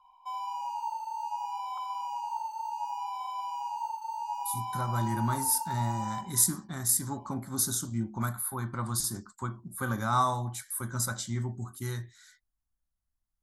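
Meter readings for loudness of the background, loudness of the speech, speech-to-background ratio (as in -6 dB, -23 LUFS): -36.0 LUFS, -31.0 LUFS, 5.0 dB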